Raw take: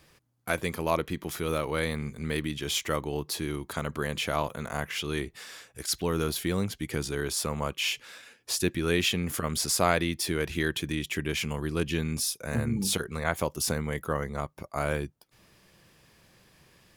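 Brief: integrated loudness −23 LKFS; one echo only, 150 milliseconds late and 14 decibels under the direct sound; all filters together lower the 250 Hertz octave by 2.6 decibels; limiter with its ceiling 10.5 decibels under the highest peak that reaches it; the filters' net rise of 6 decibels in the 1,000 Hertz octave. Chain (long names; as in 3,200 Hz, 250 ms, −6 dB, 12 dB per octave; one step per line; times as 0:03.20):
parametric band 250 Hz −4.5 dB
parametric band 1,000 Hz +8 dB
brickwall limiter −16 dBFS
single-tap delay 150 ms −14 dB
level +7.5 dB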